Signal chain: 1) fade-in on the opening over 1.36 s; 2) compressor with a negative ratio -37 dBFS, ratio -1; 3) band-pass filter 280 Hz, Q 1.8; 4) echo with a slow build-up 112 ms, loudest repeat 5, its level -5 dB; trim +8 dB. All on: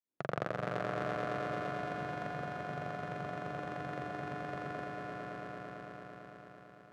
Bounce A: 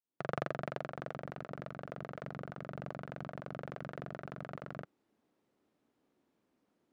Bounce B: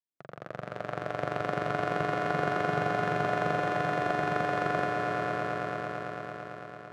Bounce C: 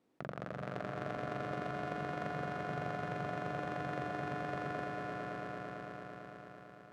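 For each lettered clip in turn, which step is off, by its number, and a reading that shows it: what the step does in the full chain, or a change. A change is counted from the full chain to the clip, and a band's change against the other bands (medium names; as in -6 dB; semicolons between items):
4, 1 kHz band -3.0 dB; 2, crest factor change -4.5 dB; 1, crest factor change -6.5 dB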